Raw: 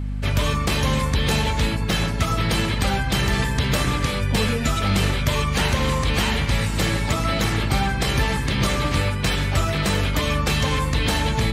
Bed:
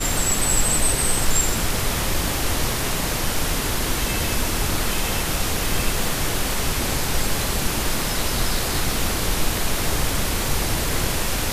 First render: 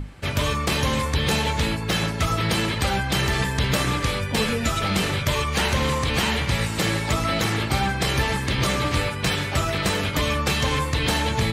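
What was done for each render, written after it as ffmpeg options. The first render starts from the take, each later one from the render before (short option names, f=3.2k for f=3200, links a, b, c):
-af "bandreject=f=50:t=h:w=6,bandreject=f=100:t=h:w=6,bandreject=f=150:t=h:w=6,bandreject=f=200:t=h:w=6,bandreject=f=250:t=h:w=6"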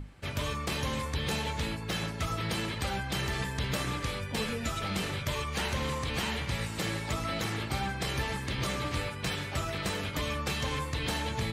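-af "volume=-10dB"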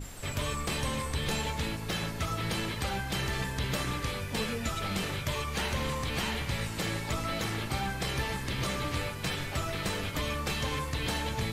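-filter_complex "[1:a]volume=-24dB[a];[0:a][a]amix=inputs=2:normalize=0"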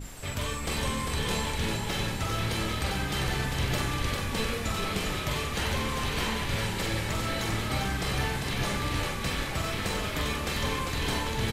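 -filter_complex "[0:a]asplit=2[a][b];[b]adelay=45,volume=-5.5dB[c];[a][c]amix=inputs=2:normalize=0,asplit=2[d][e];[e]asplit=8[f][g][h][i][j][k][l][m];[f]adelay=398,afreqshift=-39,volume=-4.5dB[n];[g]adelay=796,afreqshift=-78,volume=-9.5dB[o];[h]adelay=1194,afreqshift=-117,volume=-14.6dB[p];[i]adelay=1592,afreqshift=-156,volume=-19.6dB[q];[j]adelay=1990,afreqshift=-195,volume=-24.6dB[r];[k]adelay=2388,afreqshift=-234,volume=-29.7dB[s];[l]adelay=2786,afreqshift=-273,volume=-34.7dB[t];[m]adelay=3184,afreqshift=-312,volume=-39.8dB[u];[n][o][p][q][r][s][t][u]amix=inputs=8:normalize=0[v];[d][v]amix=inputs=2:normalize=0"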